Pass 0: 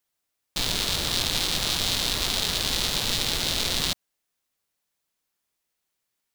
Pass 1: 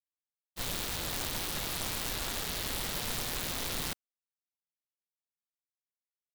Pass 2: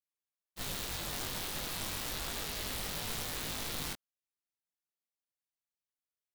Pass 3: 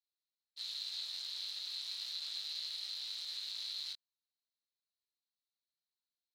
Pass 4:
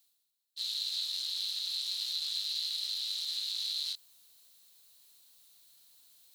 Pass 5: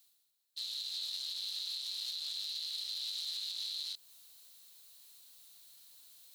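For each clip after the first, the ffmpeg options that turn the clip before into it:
ffmpeg -i in.wav -af "aeval=exprs='(mod(7.08*val(0)+1,2)-1)/7.08':channel_layout=same,agate=range=-33dB:threshold=-24dB:ratio=3:detection=peak,volume=-4.5dB" out.wav
ffmpeg -i in.wav -af "flanger=delay=19:depth=2.6:speed=0.32" out.wav
ffmpeg -i in.wav -af "alimiter=level_in=5.5dB:limit=-24dB:level=0:latency=1,volume=-5.5dB,bandpass=frequency=4100:width_type=q:width=9:csg=0,volume=10.5dB" out.wav
ffmpeg -i in.wav -af "areverse,acompressor=mode=upward:threshold=-53dB:ratio=2.5,areverse,aexciter=amount=2.2:drive=6.1:freq=2900" out.wav
ffmpeg -i in.wav -filter_complex "[0:a]lowshelf=frequency=500:gain=-2.5,acrossover=split=710[link_01][link_02];[link_02]alimiter=level_in=8.5dB:limit=-24dB:level=0:latency=1:release=210,volume=-8.5dB[link_03];[link_01][link_03]amix=inputs=2:normalize=0,volume=3dB" out.wav

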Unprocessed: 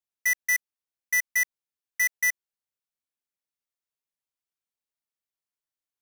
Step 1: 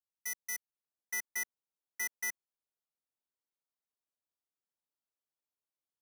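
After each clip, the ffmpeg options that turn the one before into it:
ffmpeg -i in.wav -filter_complex "[0:a]equalizer=frequency=2100:width=1.9:gain=-12.5,acrossover=split=190|2600[link_01][link_02][link_03];[link_02]dynaudnorm=framelen=500:gausssize=3:maxgain=7.5dB[link_04];[link_01][link_04][link_03]amix=inputs=3:normalize=0,volume=-8.5dB" out.wav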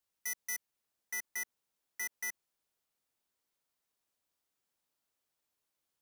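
ffmpeg -i in.wav -af "alimiter=level_in=15dB:limit=-24dB:level=0:latency=1,volume=-15dB,volume=9dB" out.wav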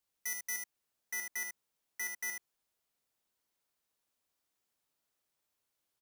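ffmpeg -i in.wav -af "aecho=1:1:75:0.531" out.wav

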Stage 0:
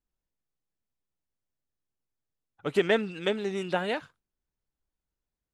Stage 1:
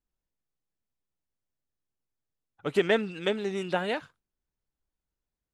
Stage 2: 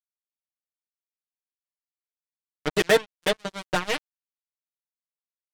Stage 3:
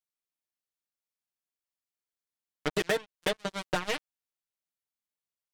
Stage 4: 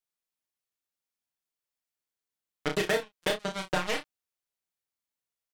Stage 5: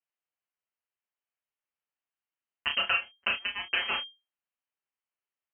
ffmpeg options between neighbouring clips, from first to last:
ffmpeg -i in.wav -af anull out.wav
ffmpeg -i in.wav -af "acrusher=bits=3:mix=0:aa=0.5,aecho=1:1:6.4:0.87,volume=2.5dB" out.wav
ffmpeg -i in.wav -af "acompressor=threshold=-25dB:ratio=6" out.wav
ffmpeg -i in.wav -af "aecho=1:1:32|60:0.596|0.188" out.wav
ffmpeg -i in.wav -af "lowpass=frequency=2700:width_type=q:width=0.5098,lowpass=frequency=2700:width_type=q:width=0.6013,lowpass=frequency=2700:width_type=q:width=0.9,lowpass=frequency=2700:width_type=q:width=2.563,afreqshift=-3200" out.wav

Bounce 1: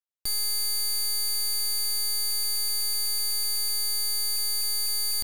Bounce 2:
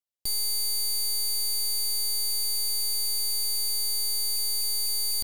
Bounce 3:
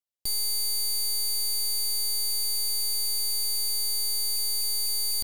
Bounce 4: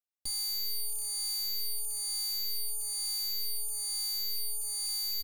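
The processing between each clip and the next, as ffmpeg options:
ffmpeg -i in.wav -af "equalizer=frequency=1500:width_type=o:width=0.76:gain=-13" out.wav
ffmpeg -i in.wav -af anull out.wav
ffmpeg -i in.wav -filter_complex "[0:a]asplit=2[link_01][link_02];[link_02]adelay=2.2,afreqshift=1.1[link_03];[link_01][link_03]amix=inputs=2:normalize=1,volume=-3.5dB" out.wav

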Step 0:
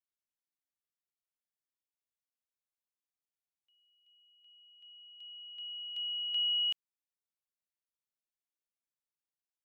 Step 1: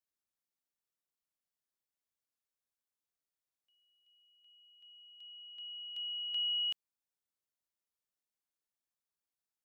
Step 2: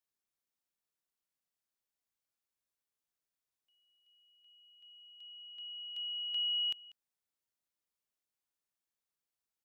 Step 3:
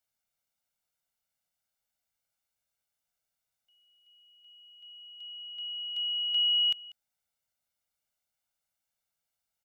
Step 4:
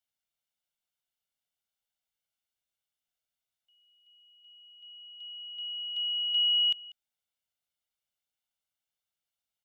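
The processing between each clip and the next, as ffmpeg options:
ffmpeg -i in.wav -af "equalizer=frequency=2600:width_type=o:width=0.77:gain=-3.5" out.wav
ffmpeg -i in.wav -filter_complex "[0:a]asplit=2[link_01][link_02];[link_02]adelay=192.4,volume=-19dB,highshelf=frequency=4000:gain=-4.33[link_03];[link_01][link_03]amix=inputs=2:normalize=0" out.wav
ffmpeg -i in.wav -af "aecho=1:1:1.4:0.65,volume=3.5dB" out.wav
ffmpeg -i in.wav -af "equalizer=frequency=3200:width_type=o:width=0.56:gain=8,volume=-6dB" out.wav

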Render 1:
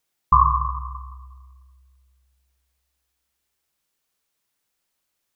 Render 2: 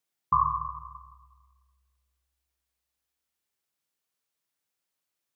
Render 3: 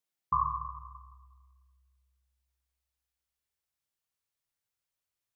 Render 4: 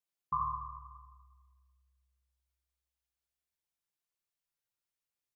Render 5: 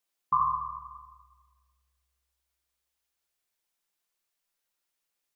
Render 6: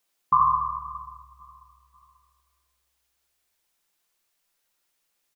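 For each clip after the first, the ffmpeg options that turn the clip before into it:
ffmpeg -i in.wav -af "highpass=frequency=84:width=0.5412,highpass=frequency=84:width=1.3066,volume=-8dB" out.wav
ffmpeg -i in.wav -af "asubboost=boost=6:cutoff=97,volume=-5dB" out.wav
ffmpeg -i in.wav -filter_complex "[0:a]aecho=1:1:5.8:0.4,asplit=2[link_01][link_02];[link_02]aecho=0:1:77:0.596[link_03];[link_01][link_03]amix=inputs=2:normalize=0,volume=-6.5dB" out.wav
ffmpeg -i in.wav -af "equalizer=frequency=80:width_type=o:width=2.1:gain=-12.5,volume=8.5dB" out.wav
ffmpeg -i in.wav -filter_complex "[0:a]asplit=2[link_01][link_02];[link_02]alimiter=limit=-21dB:level=0:latency=1:release=183,volume=-2.5dB[link_03];[link_01][link_03]amix=inputs=2:normalize=0,aecho=1:1:539|1078|1617:0.0708|0.0269|0.0102,volume=3dB" out.wav

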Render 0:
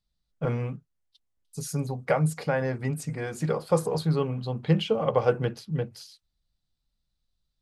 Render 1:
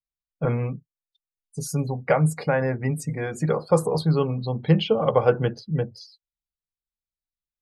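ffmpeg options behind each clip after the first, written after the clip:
ffmpeg -i in.wav -af "afftdn=noise_reduction=25:noise_floor=-46,volume=4dB" out.wav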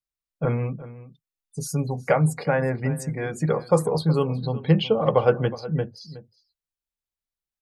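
ffmpeg -i in.wav -filter_complex "[0:a]asplit=2[link_01][link_02];[link_02]adelay=367.3,volume=-16dB,highshelf=frequency=4000:gain=-8.27[link_03];[link_01][link_03]amix=inputs=2:normalize=0" out.wav

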